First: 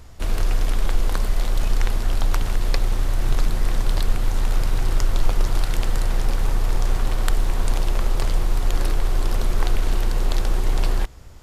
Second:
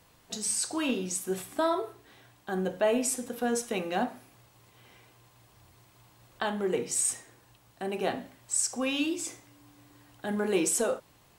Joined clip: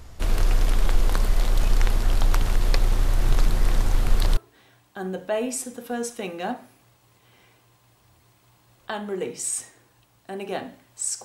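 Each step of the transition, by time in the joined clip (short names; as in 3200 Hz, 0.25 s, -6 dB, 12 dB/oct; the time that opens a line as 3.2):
first
3.86–4.37 reverse
4.37 switch to second from 1.89 s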